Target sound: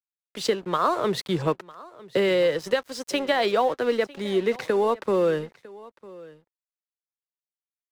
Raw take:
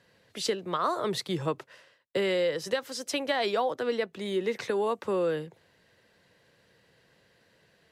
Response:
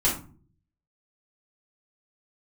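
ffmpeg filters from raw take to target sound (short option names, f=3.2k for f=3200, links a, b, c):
-af "highshelf=f=3.9k:g=-6,aeval=exprs='sgn(val(0))*max(abs(val(0))-0.00398,0)':c=same,aecho=1:1:952:0.0891,volume=6.5dB"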